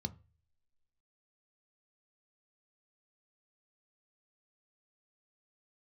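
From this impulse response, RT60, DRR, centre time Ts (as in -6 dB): 0.35 s, 9.0 dB, 4 ms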